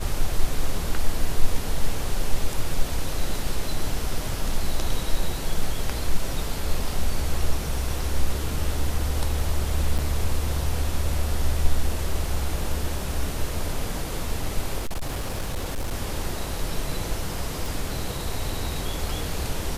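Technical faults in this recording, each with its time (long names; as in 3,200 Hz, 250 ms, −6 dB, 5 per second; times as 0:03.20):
0:09.98–0:09.99: drop-out 7.4 ms
0:14.79–0:15.94: clipping −23.5 dBFS
0:17.66: click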